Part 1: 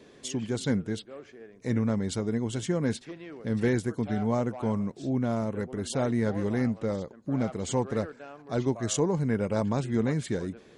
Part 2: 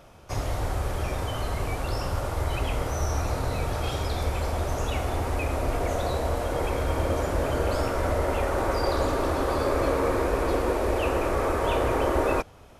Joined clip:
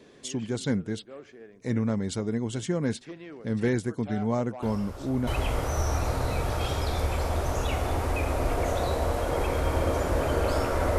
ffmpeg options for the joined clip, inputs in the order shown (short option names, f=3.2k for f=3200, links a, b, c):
-filter_complex "[1:a]asplit=2[a][b];[0:a]apad=whole_dur=10.98,atrim=end=10.98,atrim=end=5.272[c];[b]atrim=start=2.498:end=8.21[d];[a]atrim=start=1.85:end=2.5,asetpts=PTS-STARTPTS,volume=-13dB,afade=t=in:d=0.004:c=hsin,afade=t=out:st=0.646:d=0.004:c=hsin,adelay=4620[e];[c][d]acrossfade=d=0.004:c1=hsin:c2=hsin[f];[f][e]amix=inputs=2:normalize=0"